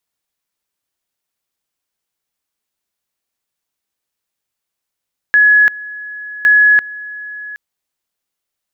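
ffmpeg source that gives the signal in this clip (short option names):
-f lavfi -i "aevalsrc='pow(10,(-5.5-19.5*gte(mod(t,1.11),0.34))/20)*sin(2*PI*1690*t)':d=2.22:s=44100"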